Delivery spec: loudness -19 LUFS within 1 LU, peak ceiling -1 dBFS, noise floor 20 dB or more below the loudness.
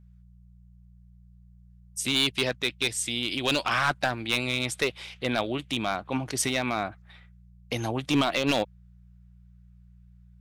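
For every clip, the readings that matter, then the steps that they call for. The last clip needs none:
clipped 0.5%; flat tops at -16.5 dBFS; hum 60 Hz; harmonics up to 180 Hz; hum level -49 dBFS; loudness -27.5 LUFS; peak -16.5 dBFS; loudness target -19.0 LUFS
-> clip repair -16.5 dBFS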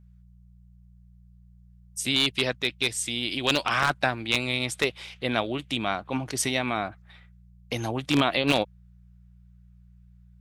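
clipped 0.0%; hum 60 Hz; harmonics up to 180 Hz; hum level -49 dBFS
-> de-hum 60 Hz, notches 3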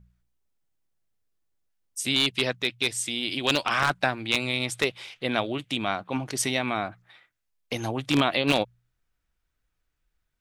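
hum none; loudness -26.5 LUFS; peak -7.5 dBFS; loudness target -19.0 LUFS
-> gain +7.5 dB; limiter -1 dBFS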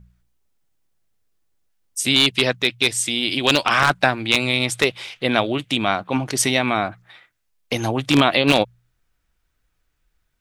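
loudness -19.0 LUFS; peak -1.0 dBFS; noise floor -71 dBFS

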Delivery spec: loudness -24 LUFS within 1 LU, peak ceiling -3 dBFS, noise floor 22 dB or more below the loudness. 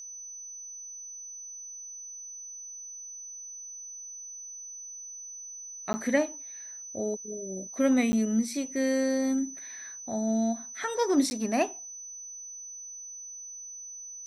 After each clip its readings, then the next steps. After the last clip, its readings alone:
dropouts 3; longest dropout 10 ms; steady tone 6000 Hz; tone level -40 dBFS; loudness -32.0 LUFS; peak -11.5 dBFS; loudness target -24.0 LUFS
-> interpolate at 5.93/8.12/11.3, 10 ms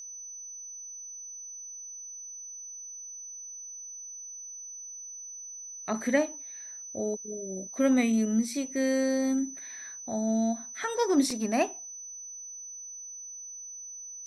dropouts 0; steady tone 6000 Hz; tone level -40 dBFS
-> notch 6000 Hz, Q 30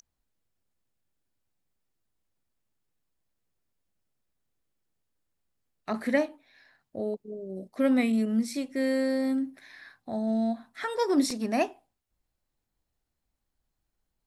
steady tone none; loudness -29.0 LUFS; peak -11.5 dBFS; loudness target -24.0 LUFS
-> gain +5 dB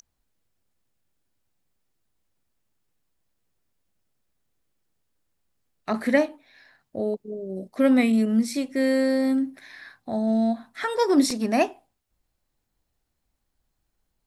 loudness -24.0 LUFS; peak -6.5 dBFS; noise floor -77 dBFS

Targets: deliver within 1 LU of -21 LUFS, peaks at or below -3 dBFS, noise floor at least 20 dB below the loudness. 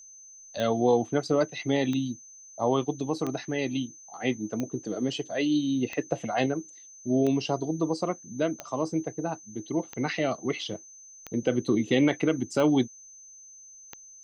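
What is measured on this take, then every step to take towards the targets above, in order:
clicks 11; steady tone 6200 Hz; tone level -47 dBFS; loudness -28.5 LUFS; peak -11.5 dBFS; loudness target -21.0 LUFS
-> de-click; notch 6200 Hz, Q 30; gain +7.5 dB

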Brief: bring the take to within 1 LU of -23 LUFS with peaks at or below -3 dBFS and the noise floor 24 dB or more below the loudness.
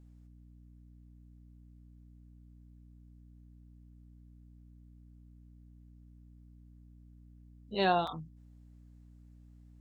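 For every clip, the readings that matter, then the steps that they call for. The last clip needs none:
dropouts 1; longest dropout 3.7 ms; hum 60 Hz; harmonics up to 300 Hz; hum level -53 dBFS; loudness -32.0 LUFS; peak -15.0 dBFS; loudness target -23.0 LUFS
-> interpolate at 8.07, 3.7 ms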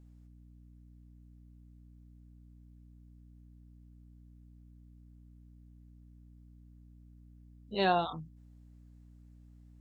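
dropouts 0; hum 60 Hz; harmonics up to 300 Hz; hum level -53 dBFS
-> de-hum 60 Hz, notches 5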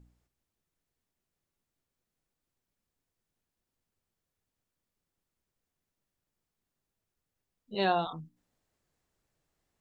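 hum none; loudness -31.5 LUFS; peak -15.5 dBFS; loudness target -23.0 LUFS
-> gain +8.5 dB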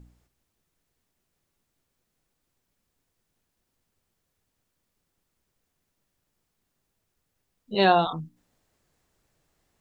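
loudness -23.0 LUFS; peak -7.0 dBFS; noise floor -79 dBFS

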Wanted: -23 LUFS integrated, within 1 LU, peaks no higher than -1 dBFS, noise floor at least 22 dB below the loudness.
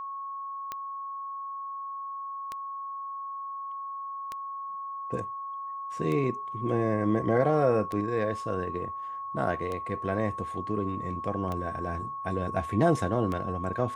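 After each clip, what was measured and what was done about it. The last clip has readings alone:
clicks 8; steady tone 1100 Hz; tone level -34 dBFS; loudness -31.0 LUFS; peak -11.0 dBFS; loudness target -23.0 LUFS
-> de-click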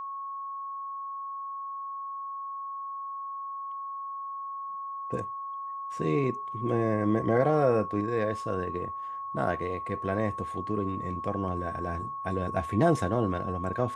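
clicks 0; steady tone 1100 Hz; tone level -34 dBFS
-> notch 1100 Hz, Q 30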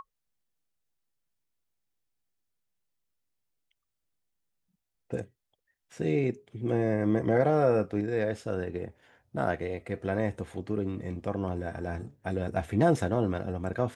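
steady tone none; loudness -30.0 LUFS; peak -11.5 dBFS; loudness target -23.0 LUFS
-> gain +7 dB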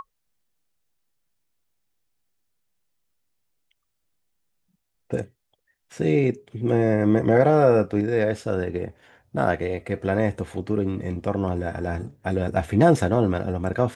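loudness -23.0 LUFS; peak -4.5 dBFS; noise floor -76 dBFS

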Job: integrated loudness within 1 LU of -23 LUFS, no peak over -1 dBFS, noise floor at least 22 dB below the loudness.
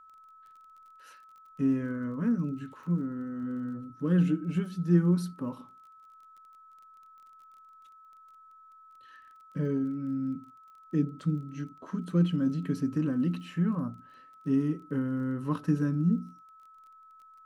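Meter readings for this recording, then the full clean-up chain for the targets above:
ticks 25/s; steady tone 1300 Hz; tone level -52 dBFS; loudness -30.5 LUFS; peak -13.0 dBFS; loudness target -23.0 LUFS
-> de-click; notch 1300 Hz, Q 30; gain +7.5 dB

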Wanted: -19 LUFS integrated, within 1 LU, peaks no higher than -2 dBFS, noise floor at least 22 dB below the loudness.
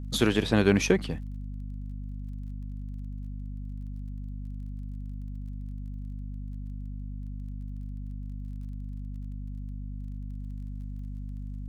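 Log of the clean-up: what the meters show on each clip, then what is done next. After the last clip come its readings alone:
ticks 26/s; hum 50 Hz; harmonics up to 250 Hz; hum level -34 dBFS; loudness -34.0 LUFS; peak -6.5 dBFS; loudness target -19.0 LUFS
-> de-click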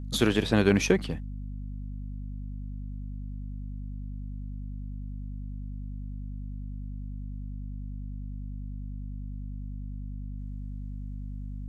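ticks 0/s; hum 50 Hz; harmonics up to 250 Hz; hum level -34 dBFS
-> de-hum 50 Hz, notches 5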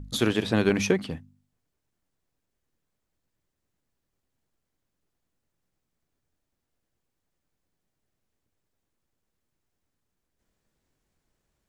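hum none; loudness -25.0 LUFS; peak -7.0 dBFS; loudness target -19.0 LUFS
-> gain +6 dB; limiter -2 dBFS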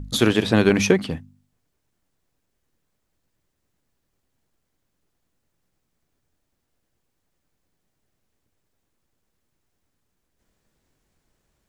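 loudness -19.0 LUFS; peak -2.0 dBFS; noise floor -76 dBFS

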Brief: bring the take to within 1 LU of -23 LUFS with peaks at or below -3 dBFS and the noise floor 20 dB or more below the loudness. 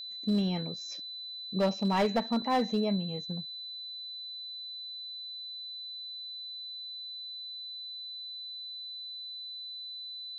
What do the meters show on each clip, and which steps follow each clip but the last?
clipped 0.5%; flat tops at -21.5 dBFS; steady tone 4000 Hz; tone level -39 dBFS; loudness -34.5 LUFS; peak -21.5 dBFS; loudness target -23.0 LUFS
-> clip repair -21.5 dBFS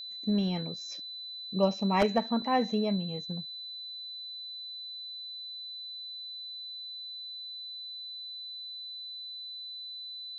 clipped 0.0%; steady tone 4000 Hz; tone level -39 dBFS
-> notch 4000 Hz, Q 30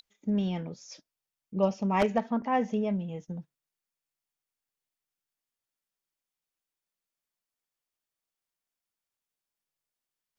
steady tone none; loudness -30.0 LUFS; peak -12.0 dBFS; loudness target -23.0 LUFS
-> gain +7 dB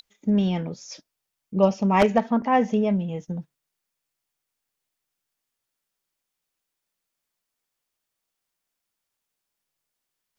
loudness -23.0 LUFS; peak -5.0 dBFS; noise floor -83 dBFS

